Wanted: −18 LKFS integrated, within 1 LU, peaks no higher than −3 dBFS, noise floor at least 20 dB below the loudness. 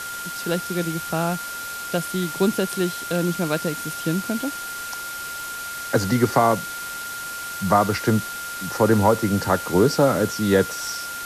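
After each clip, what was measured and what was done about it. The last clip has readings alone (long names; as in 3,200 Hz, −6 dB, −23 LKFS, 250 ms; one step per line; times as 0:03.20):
interfering tone 1,400 Hz; level of the tone −31 dBFS; background noise floor −32 dBFS; target noise floor −43 dBFS; integrated loudness −23.0 LKFS; sample peak −5.0 dBFS; target loudness −18.0 LKFS
→ notch filter 1,400 Hz, Q 30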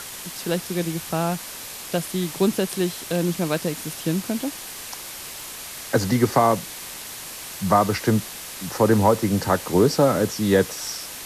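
interfering tone none found; background noise floor −36 dBFS; target noise floor −44 dBFS
→ noise reduction from a noise print 8 dB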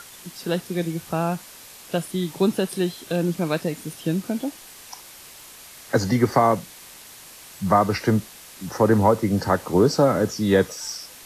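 background noise floor −44 dBFS; integrated loudness −22.5 LKFS; sample peak −5.0 dBFS; target loudness −18.0 LKFS
→ level +4.5 dB
brickwall limiter −3 dBFS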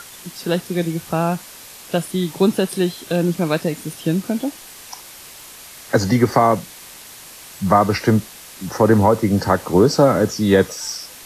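integrated loudness −18.5 LKFS; sample peak −3.0 dBFS; background noise floor −40 dBFS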